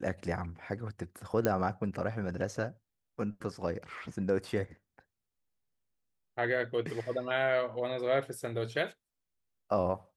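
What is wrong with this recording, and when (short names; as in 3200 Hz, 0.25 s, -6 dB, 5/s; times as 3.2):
1.45 pop -14 dBFS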